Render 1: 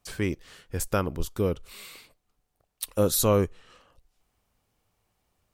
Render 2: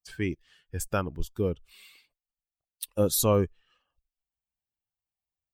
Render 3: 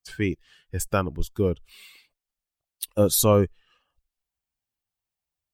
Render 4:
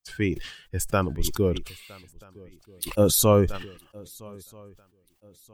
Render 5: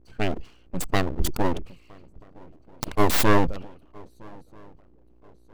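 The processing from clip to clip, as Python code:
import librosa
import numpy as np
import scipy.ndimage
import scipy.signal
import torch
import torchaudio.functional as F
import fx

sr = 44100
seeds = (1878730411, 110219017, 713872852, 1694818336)

y1 = fx.bin_expand(x, sr, power=1.5)
y2 = fx.wow_flutter(y1, sr, seeds[0], rate_hz=2.1, depth_cents=24.0)
y2 = y2 * librosa.db_to_amplitude(4.5)
y3 = fx.echo_swing(y2, sr, ms=1284, ratio=3, feedback_pct=32, wet_db=-24)
y3 = fx.sustainer(y3, sr, db_per_s=86.0)
y4 = fx.wiener(y3, sr, points=25)
y4 = fx.add_hum(y4, sr, base_hz=60, snr_db=30)
y4 = np.abs(y4)
y4 = y4 * librosa.db_to_amplitude(3.0)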